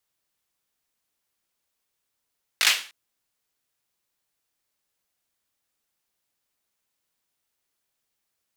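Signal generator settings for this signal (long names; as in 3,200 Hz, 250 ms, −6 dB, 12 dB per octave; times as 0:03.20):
synth clap length 0.30 s, apart 19 ms, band 2,700 Hz, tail 0.38 s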